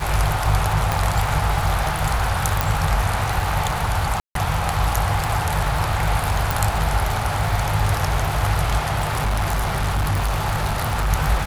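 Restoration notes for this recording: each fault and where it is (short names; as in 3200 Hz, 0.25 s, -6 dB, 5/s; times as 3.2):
crackle 150/s -25 dBFS
0.92 pop
2.61 pop
4.2–4.35 gap 0.153 s
6.51 pop
8.98–11.11 clipped -17 dBFS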